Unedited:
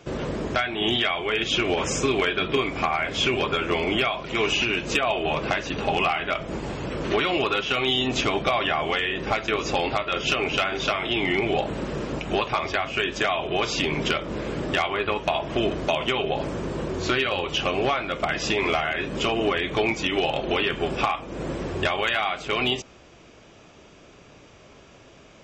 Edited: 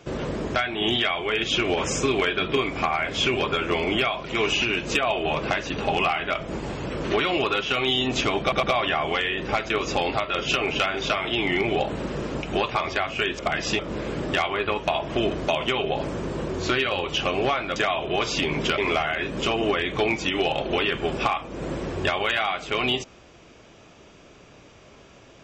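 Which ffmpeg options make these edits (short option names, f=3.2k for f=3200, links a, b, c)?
-filter_complex "[0:a]asplit=7[a][b][c][d][e][f][g];[a]atrim=end=8.522[h];[b]atrim=start=8.408:end=8.522[i];[c]atrim=start=8.408:end=13.172[j];[d]atrim=start=18.158:end=18.562[k];[e]atrim=start=14.188:end=18.162[l];[f]atrim=start=13.168:end=14.192[m];[g]atrim=start=18.558[n];[h][i]acrossfade=d=0.004:c1=hsin:c2=hsin[o];[o][j]acrossfade=d=0.004:c1=hsin:c2=hsin[p];[p][k]acrossfade=d=0.004:c1=hsin:c2=hsin[q];[q][l]acrossfade=d=0.004:c1=hsin:c2=hsin[r];[r][m]acrossfade=d=0.004:c1=hsin:c2=hsin[s];[s][n]acrossfade=d=0.004:c1=hsin:c2=hsin"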